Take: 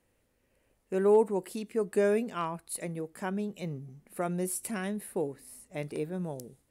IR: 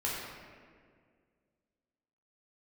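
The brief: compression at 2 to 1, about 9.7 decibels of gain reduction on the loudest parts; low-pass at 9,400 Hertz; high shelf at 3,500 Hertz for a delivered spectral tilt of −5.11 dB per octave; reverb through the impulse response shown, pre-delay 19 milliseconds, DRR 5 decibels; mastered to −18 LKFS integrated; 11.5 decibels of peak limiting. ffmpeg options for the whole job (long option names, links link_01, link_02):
-filter_complex "[0:a]lowpass=9400,highshelf=frequency=3500:gain=7.5,acompressor=threshold=-37dB:ratio=2,alimiter=level_in=6.5dB:limit=-24dB:level=0:latency=1,volume=-6.5dB,asplit=2[link_01][link_02];[1:a]atrim=start_sample=2205,adelay=19[link_03];[link_02][link_03]afir=irnorm=-1:irlink=0,volume=-11dB[link_04];[link_01][link_04]amix=inputs=2:normalize=0,volume=21.5dB"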